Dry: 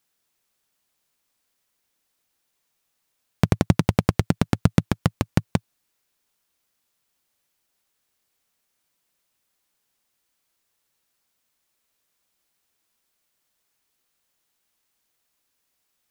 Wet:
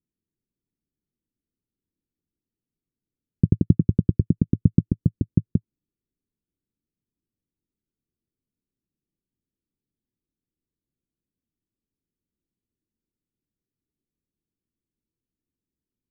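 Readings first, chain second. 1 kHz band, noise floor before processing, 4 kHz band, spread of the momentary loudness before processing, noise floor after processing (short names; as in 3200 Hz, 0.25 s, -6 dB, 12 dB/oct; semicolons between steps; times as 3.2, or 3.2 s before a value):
under -35 dB, -75 dBFS, under -40 dB, 6 LU, under -85 dBFS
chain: inverse Chebyshev low-pass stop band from 890 Hz, stop band 50 dB; gain +1.5 dB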